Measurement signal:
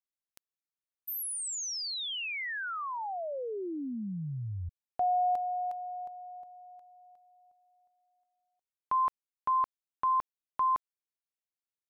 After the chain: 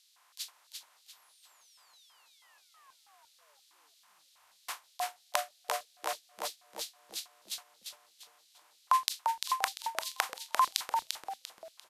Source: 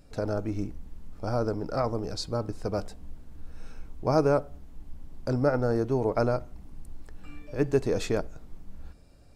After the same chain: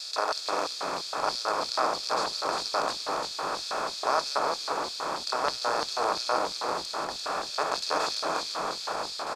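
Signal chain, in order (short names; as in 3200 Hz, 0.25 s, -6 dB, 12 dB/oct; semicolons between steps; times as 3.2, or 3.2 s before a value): per-bin compression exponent 0.2; gate with hold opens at -16 dBFS, closes at -19 dBFS, hold 17 ms, range -31 dB; LFO high-pass square 3.1 Hz 1000–4000 Hz; on a send: frequency-shifting echo 0.345 s, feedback 35%, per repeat -130 Hz, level -5 dB; on the sum: gain -5 dB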